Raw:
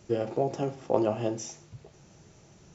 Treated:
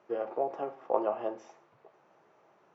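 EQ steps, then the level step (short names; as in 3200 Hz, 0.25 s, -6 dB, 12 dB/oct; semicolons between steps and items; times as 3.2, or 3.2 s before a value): HPF 610 Hz 12 dB/oct; LPF 1400 Hz 12 dB/oct; bell 1100 Hz +4 dB 0.32 oct; +1.5 dB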